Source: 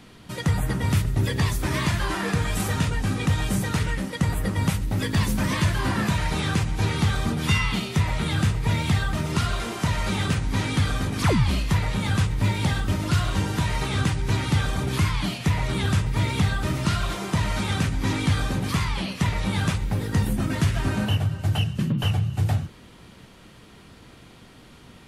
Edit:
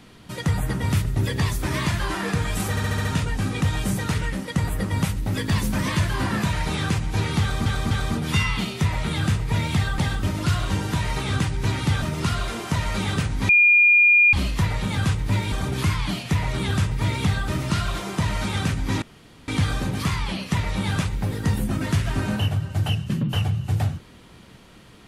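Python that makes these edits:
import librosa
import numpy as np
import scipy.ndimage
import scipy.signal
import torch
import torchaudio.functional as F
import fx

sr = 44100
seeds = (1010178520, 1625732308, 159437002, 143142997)

y = fx.edit(x, sr, fx.stutter(start_s=2.7, slice_s=0.07, count=6),
    fx.repeat(start_s=7.06, length_s=0.25, count=3),
    fx.bleep(start_s=10.61, length_s=0.84, hz=2420.0, db=-11.5),
    fx.move(start_s=12.64, length_s=2.03, to_s=9.14),
    fx.insert_room_tone(at_s=18.17, length_s=0.46), tone=tone)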